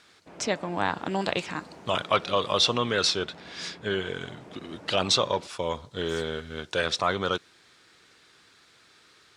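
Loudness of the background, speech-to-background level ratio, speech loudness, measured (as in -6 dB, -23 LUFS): -47.5 LUFS, 20.0 dB, -27.5 LUFS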